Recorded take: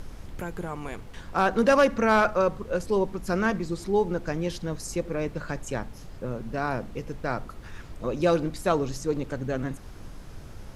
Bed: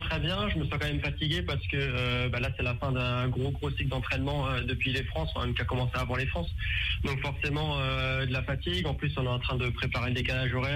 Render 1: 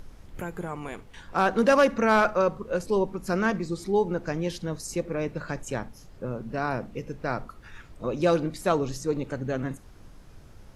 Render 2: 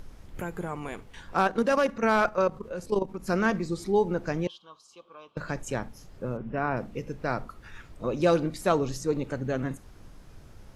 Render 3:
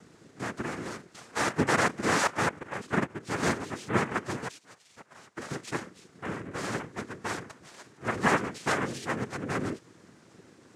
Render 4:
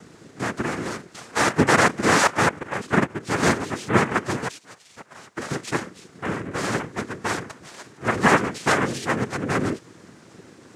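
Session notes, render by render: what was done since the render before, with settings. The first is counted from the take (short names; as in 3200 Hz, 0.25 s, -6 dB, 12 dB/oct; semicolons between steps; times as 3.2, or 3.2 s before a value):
noise print and reduce 7 dB
1.41–3.28 level quantiser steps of 11 dB; 4.47–5.37 double band-pass 1900 Hz, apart 1.5 oct; 6.37–6.77 polynomial smoothing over 25 samples
minimum comb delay 7.7 ms; noise vocoder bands 3
gain +8 dB; limiter -3 dBFS, peak gain reduction 1.5 dB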